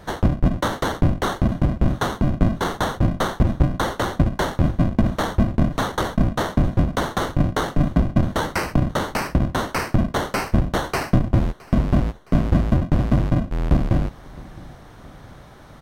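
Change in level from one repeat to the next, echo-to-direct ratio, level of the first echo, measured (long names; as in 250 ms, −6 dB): −6.0 dB, −20.5 dB, −22.0 dB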